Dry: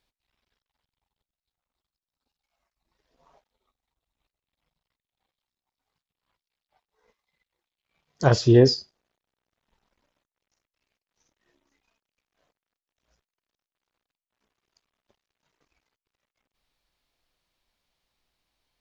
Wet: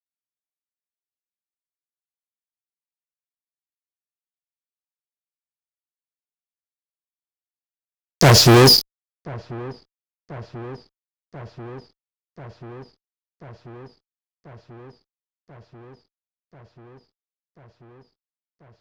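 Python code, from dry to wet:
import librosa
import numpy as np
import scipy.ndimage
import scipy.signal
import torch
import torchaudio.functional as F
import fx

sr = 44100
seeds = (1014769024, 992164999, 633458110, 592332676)

y = fx.fuzz(x, sr, gain_db=34.0, gate_db=-39.0)
y = fx.echo_wet_lowpass(y, sr, ms=1038, feedback_pct=78, hz=1700.0, wet_db=-21.0)
y = y * librosa.db_to_amplitude(4.5)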